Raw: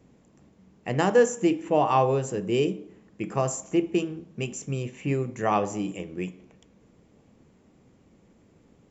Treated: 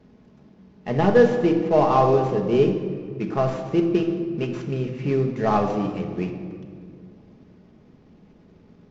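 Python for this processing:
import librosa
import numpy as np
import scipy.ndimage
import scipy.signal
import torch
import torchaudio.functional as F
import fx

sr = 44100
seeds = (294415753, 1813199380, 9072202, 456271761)

y = fx.cvsd(x, sr, bps=32000)
y = fx.high_shelf(y, sr, hz=2600.0, db=-10.5)
y = fx.room_shoebox(y, sr, seeds[0], volume_m3=3600.0, walls='mixed', distance_m=1.4)
y = F.gain(torch.from_numpy(y), 4.0).numpy()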